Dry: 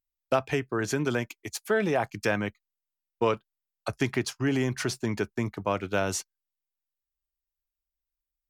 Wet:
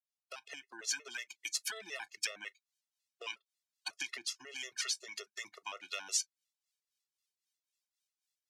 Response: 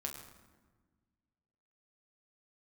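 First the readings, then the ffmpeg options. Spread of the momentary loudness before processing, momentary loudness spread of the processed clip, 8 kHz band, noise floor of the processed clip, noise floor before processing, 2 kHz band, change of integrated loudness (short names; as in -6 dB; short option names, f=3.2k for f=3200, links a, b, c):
8 LU, 13 LU, 0.0 dB, under -85 dBFS, under -85 dBFS, -9.5 dB, -10.5 dB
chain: -filter_complex "[0:a]acrossover=split=1200[a][b];[a]aeval=exprs='val(0)*(1-0.7/2+0.7/2*cos(2*PI*3.8*n/s))':c=same[c];[b]aeval=exprs='val(0)*(1-0.7/2-0.7/2*cos(2*PI*3.8*n/s))':c=same[d];[c][d]amix=inputs=2:normalize=0,lowpass=4.5k,highshelf=f=2.7k:g=8.5,asplit=2[e][f];[1:a]atrim=start_sample=2205,atrim=end_sample=3087,asetrate=70560,aresample=44100[g];[f][g]afir=irnorm=-1:irlink=0,volume=-10dB[h];[e][h]amix=inputs=2:normalize=0,acompressor=threshold=-40dB:ratio=4,highpass=290,aderivative,dynaudnorm=f=250:g=3:m=13dB,afftfilt=real='re*gt(sin(2*PI*5.5*pts/sr)*(1-2*mod(floor(b*sr/1024/360),2)),0)':imag='im*gt(sin(2*PI*5.5*pts/sr)*(1-2*mod(floor(b*sr/1024/360),2)),0)':win_size=1024:overlap=0.75,volume=3.5dB"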